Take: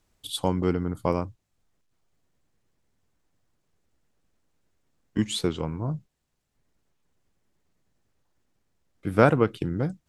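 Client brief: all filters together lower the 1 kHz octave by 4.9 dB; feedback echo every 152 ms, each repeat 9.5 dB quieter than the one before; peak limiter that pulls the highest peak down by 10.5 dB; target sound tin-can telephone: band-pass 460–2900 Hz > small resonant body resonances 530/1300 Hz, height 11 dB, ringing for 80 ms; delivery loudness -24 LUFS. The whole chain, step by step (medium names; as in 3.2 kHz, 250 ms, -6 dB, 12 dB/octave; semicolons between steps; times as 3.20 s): peaking EQ 1 kHz -6.5 dB; peak limiter -15 dBFS; band-pass 460–2900 Hz; feedback delay 152 ms, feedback 33%, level -9.5 dB; small resonant body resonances 530/1300 Hz, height 11 dB, ringing for 80 ms; trim +9.5 dB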